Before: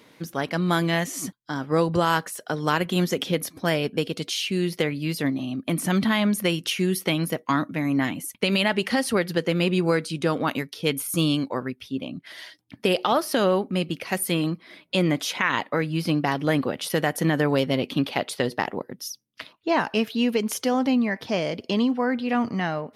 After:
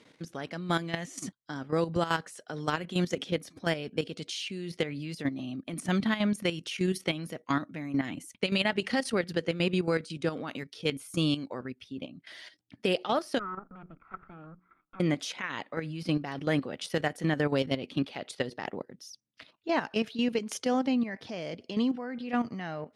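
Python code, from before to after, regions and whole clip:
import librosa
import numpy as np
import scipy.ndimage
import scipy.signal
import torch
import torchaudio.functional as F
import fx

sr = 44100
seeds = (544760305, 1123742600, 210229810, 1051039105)

y = fx.chain(x, sr, fx.lower_of_two(delay_ms=0.87),
    fx.ladder_lowpass(hz=1400.0, resonance_pct=85),
    fx.hum_notches(base_hz=60, count=6), at=(13.39, 15.0))
y = scipy.signal.sosfilt(scipy.signal.butter(4, 9300.0, 'lowpass', fs=sr, output='sos'), y)
y = fx.peak_eq(y, sr, hz=1000.0, db=-3.5, octaves=0.41)
y = fx.level_steps(y, sr, step_db=11)
y = y * librosa.db_to_amplitude(-3.5)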